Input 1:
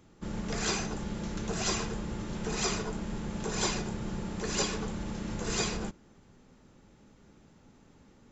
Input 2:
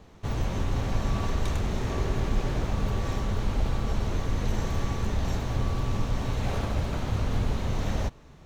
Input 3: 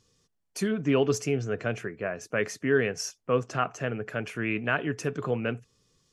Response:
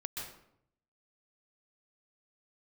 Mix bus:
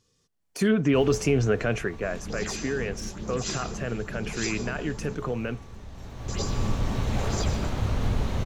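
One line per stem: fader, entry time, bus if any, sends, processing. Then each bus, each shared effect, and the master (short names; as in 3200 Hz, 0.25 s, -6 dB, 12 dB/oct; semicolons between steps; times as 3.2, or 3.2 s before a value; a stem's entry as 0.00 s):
-4.0 dB, 1.80 s, muted 5.15–6.28, send -6 dB, phaser stages 4, 2.2 Hz, lowest notch 110–3000 Hz
+1.0 dB, 0.70 s, no send, auto duck -16 dB, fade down 1.80 s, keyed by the third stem
1.69 s -2.5 dB -> 2.18 s -9.5 dB, 0.00 s, no send, de-esser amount 85%; limiter -21.5 dBFS, peak gain reduction 10 dB; AGC gain up to 11 dB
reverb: on, RT60 0.70 s, pre-delay 0.119 s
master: dry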